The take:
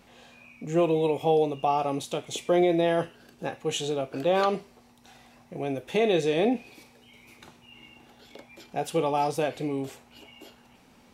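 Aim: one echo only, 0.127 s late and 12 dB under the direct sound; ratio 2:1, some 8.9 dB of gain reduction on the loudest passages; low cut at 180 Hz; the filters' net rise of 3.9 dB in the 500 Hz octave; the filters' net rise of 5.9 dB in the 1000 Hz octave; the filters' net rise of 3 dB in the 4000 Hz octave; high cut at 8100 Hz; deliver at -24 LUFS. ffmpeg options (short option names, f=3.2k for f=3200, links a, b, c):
-af "highpass=180,lowpass=8.1k,equalizer=f=500:t=o:g=3,equalizer=f=1k:t=o:g=7,equalizer=f=4k:t=o:g=3.5,acompressor=threshold=-31dB:ratio=2,aecho=1:1:127:0.251,volume=6.5dB"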